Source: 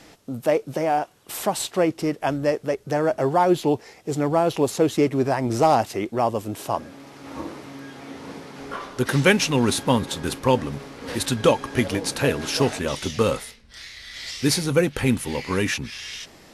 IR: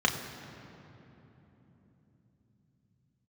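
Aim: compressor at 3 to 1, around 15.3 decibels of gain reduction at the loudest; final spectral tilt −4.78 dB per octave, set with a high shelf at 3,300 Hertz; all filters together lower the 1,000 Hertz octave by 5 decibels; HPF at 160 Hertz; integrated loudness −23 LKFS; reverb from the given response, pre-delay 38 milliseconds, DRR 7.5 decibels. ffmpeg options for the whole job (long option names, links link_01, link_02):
-filter_complex "[0:a]highpass=160,equalizer=frequency=1000:width_type=o:gain=-6.5,highshelf=frequency=3300:gain=-6.5,acompressor=threshold=-36dB:ratio=3,asplit=2[link_01][link_02];[1:a]atrim=start_sample=2205,adelay=38[link_03];[link_02][link_03]afir=irnorm=-1:irlink=0,volume=-20dB[link_04];[link_01][link_04]amix=inputs=2:normalize=0,volume=13.5dB"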